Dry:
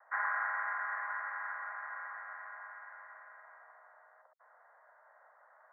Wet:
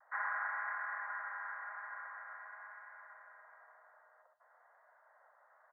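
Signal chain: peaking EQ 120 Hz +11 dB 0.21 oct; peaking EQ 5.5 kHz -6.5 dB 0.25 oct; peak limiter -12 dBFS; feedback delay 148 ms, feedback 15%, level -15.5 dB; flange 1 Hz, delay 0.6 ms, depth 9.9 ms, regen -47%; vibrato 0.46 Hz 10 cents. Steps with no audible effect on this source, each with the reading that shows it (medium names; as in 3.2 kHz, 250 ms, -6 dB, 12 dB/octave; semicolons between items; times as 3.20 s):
peaking EQ 120 Hz: input has nothing below 480 Hz; peaking EQ 5.5 kHz: input has nothing above 2.3 kHz; peak limiter -12 dBFS: peak at its input -22.0 dBFS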